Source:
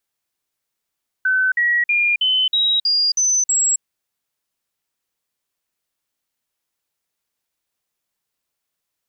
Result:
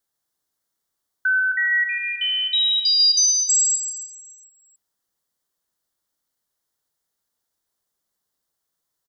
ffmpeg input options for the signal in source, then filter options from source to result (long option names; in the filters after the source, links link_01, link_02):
-f lavfi -i "aevalsrc='0.2*clip(min(mod(t,0.32),0.27-mod(t,0.32))/0.005,0,1)*sin(2*PI*1520*pow(2,floor(t/0.32)/3)*mod(t,0.32))':duration=2.56:sample_rate=44100"
-filter_complex "[0:a]equalizer=frequency=2500:width_type=o:width=0.43:gain=-14,asplit=2[link_01][link_02];[link_02]aecho=0:1:143|286|429|572|715|858|1001:0.422|0.228|0.123|0.0664|0.0359|0.0194|0.0105[link_03];[link_01][link_03]amix=inputs=2:normalize=0"